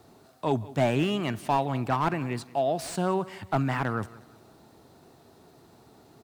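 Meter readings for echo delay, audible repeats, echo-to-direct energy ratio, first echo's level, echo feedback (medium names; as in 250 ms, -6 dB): 179 ms, 2, -19.5 dB, -20.0 dB, 35%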